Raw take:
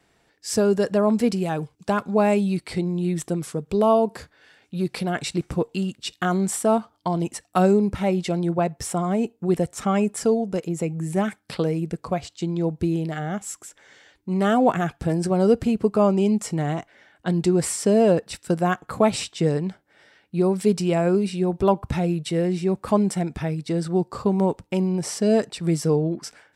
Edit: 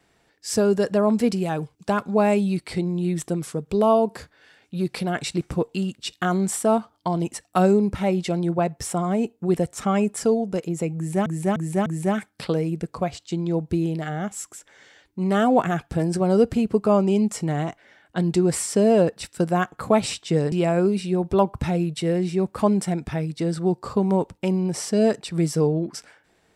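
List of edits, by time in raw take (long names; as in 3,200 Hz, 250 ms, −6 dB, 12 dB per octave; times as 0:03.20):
0:10.96–0:11.26: repeat, 4 plays
0:19.62–0:20.81: remove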